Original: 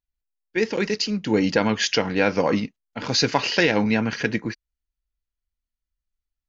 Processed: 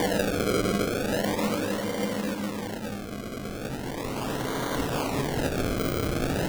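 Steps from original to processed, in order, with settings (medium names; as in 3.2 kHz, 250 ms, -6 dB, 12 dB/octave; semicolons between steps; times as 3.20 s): Paulstretch 5.7×, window 1.00 s, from 2.28 s; decimation with a swept rate 33×, swing 100% 0.38 Hz; trim -5 dB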